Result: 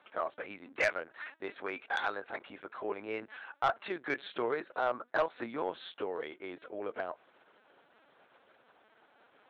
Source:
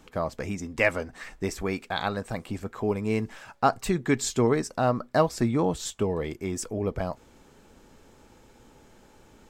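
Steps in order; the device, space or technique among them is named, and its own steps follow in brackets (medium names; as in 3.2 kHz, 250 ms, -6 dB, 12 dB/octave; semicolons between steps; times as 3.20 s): talking toy (LPC vocoder at 8 kHz pitch kept; high-pass 480 Hz 12 dB/octave; peaking EQ 1.5 kHz +6 dB 0.43 oct; saturation -15 dBFS, distortion -14 dB); trim -4.5 dB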